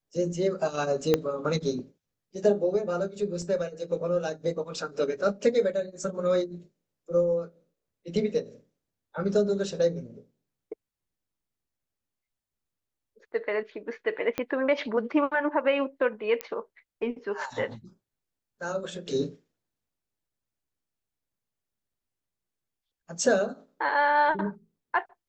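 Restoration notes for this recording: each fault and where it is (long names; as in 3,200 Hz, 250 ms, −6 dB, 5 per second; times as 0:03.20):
0:01.14: click −9 dBFS
0:03.42: drop-out 2.9 ms
0:14.38: click −14 dBFS
0:16.41: click −15 dBFS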